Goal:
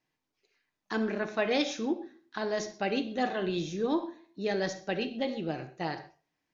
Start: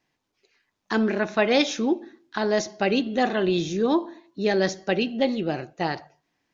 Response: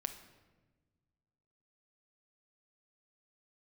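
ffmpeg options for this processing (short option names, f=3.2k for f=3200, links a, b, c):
-filter_complex "[1:a]atrim=start_sample=2205,atrim=end_sample=6174,asetrate=41895,aresample=44100[a];[0:a][a]afir=irnorm=-1:irlink=0,volume=-7dB"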